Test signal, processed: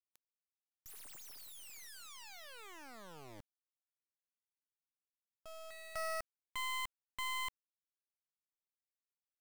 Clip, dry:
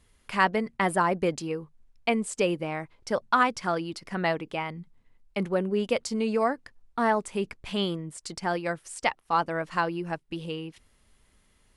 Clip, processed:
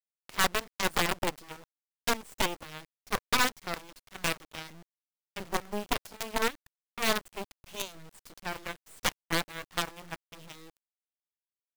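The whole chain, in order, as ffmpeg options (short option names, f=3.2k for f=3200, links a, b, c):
-af "acrusher=bits=4:dc=4:mix=0:aa=0.000001,aeval=exprs='0.376*(cos(1*acos(clip(val(0)/0.376,-1,1)))-cos(1*PI/2))+0.133*(cos(8*acos(clip(val(0)/0.376,-1,1)))-cos(8*PI/2))':c=same,volume=-3dB"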